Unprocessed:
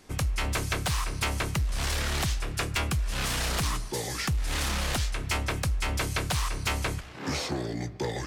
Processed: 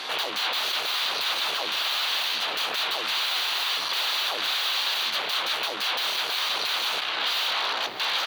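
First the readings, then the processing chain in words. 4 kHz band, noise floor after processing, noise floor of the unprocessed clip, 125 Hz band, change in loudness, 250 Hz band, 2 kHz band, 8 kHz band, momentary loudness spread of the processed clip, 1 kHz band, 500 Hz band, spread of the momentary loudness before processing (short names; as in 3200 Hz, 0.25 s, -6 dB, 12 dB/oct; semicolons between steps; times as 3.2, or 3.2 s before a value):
+12.0 dB, -31 dBFS, -41 dBFS, under -30 dB, +5.5 dB, -12.5 dB, +5.5 dB, -3.0 dB, 2 LU, +5.0 dB, -1.0 dB, 4 LU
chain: tracing distortion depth 0.17 ms; sine folder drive 16 dB, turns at -22 dBFS; vocal rider; notch 5200 Hz, Q 7.6; echo 0.556 s -19 dB; soft clip -20 dBFS, distortion -24 dB; HPF 1100 Hz 12 dB/oct; resonant high shelf 5400 Hz -12 dB, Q 1.5; limiter -24 dBFS, peak gain reduction 5 dB; graphic EQ 2000/4000/8000 Hz -8/+3/-6 dB; gain +8.5 dB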